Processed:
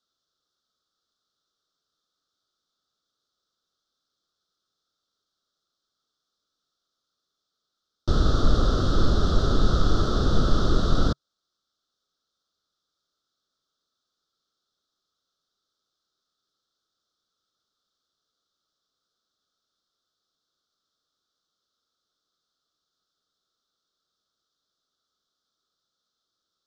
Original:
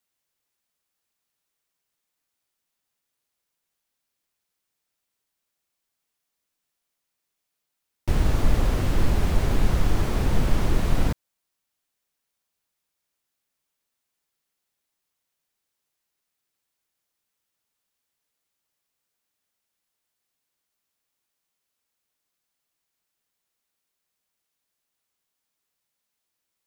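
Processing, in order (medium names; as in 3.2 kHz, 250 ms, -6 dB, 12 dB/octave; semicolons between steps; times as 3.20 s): FFT filter 140 Hz 0 dB, 410 Hz +4 dB, 650 Hz +1 dB, 940 Hz -8 dB, 1.3 kHz +12 dB, 2.3 kHz -27 dB, 3.5 kHz +9 dB, 5.5 kHz +5 dB, 11 kHz -23 dB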